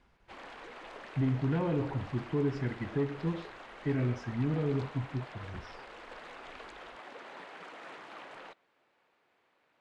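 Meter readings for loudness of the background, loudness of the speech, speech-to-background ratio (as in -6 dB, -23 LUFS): -47.5 LUFS, -33.5 LUFS, 14.0 dB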